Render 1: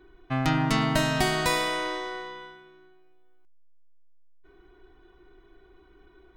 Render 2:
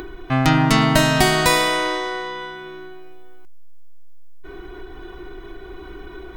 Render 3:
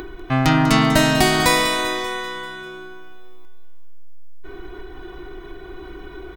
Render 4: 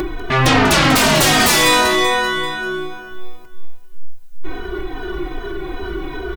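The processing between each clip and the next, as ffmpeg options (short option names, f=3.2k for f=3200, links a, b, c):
-af "highshelf=f=9.4k:g=4,acompressor=mode=upward:threshold=-32dB:ratio=2.5,volume=8.5dB"
-filter_complex "[0:a]asoftclip=type=hard:threshold=-6dB,asplit=2[a][b];[b]aecho=0:1:195|390|585|780|975|1170:0.266|0.144|0.0776|0.0419|0.0226|0.0122[c];[a][c]amix=inputs=2:normalize=0"
-filter_complex "[0:a]aeval=exprs='0.668*sin(PI/2*4.47*val(0)/0.668)':c=same,asplit=2[a][b];[b]adelay=3.1,afreqshift=-2.5[c];[a][c]amix=inputs=2:normalize=1,volume=-3dB"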